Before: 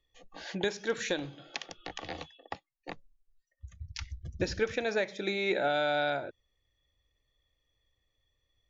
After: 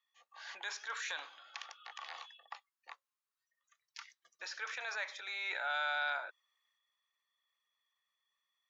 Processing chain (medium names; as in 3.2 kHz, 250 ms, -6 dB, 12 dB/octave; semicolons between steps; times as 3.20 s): ladder high-pass 960 Hz, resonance 55%; transient shaper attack -5 dB, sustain +5 dB; trim +4.5 dB